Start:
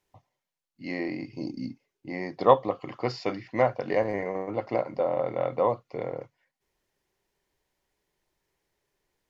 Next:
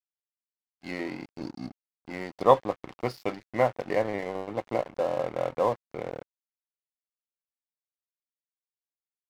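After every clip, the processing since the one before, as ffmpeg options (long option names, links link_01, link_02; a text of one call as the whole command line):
ffmpeg -i in.wav -af "aeval=exprs='sgn(val(0))*max(abs(val(0))-0.0106,0)':channel_layout=same" out.wav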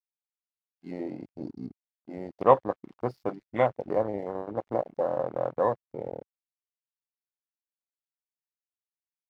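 ffmpeg -i in.wav -af "afwtdn=0.0251" out.wav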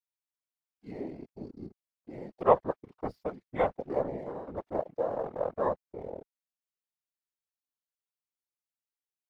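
ffmpeg -i in.wav -af "afftfilt=real='hypot(re,im)*cos(2*PI*random(0))':imag='hypot(re,im)*sin(2*PI*random(1))':win_size=512:overlap=0.75,volume=2dB" out.wav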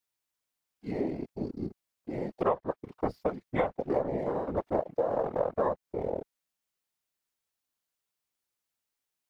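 ffmpeg -i in.wav -af "acompressor=threshold=-32dB:ratio=12,volume=8dB" out.wav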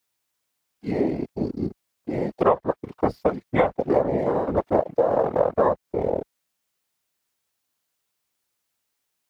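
ffmpeg -i in.wav -af "highpass=42,volume=8.5dB" out.wav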